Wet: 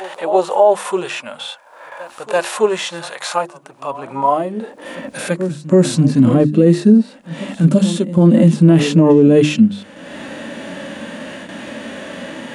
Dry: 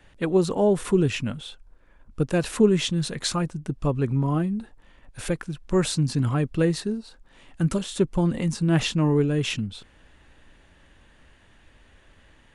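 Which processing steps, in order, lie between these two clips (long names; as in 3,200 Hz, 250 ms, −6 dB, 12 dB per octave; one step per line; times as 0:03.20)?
noise gate with hold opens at −46 dBFS
high-pass filter sweep 840 Hz → 220 Hz, 0:04.25–0:05.07
upward compression, threshold −28 dBFS
parametric band 580 Hz +7.5 dB 0.47 octaves
harmonic and percussive parts rebalanced percussive −17 dB
mains-hum notches 50/100/150/200/250/300/350 Hz
on a send: backwards echo 334 ms −18 dB
on the sum: boost into a limiter +16 dB
level −1 dB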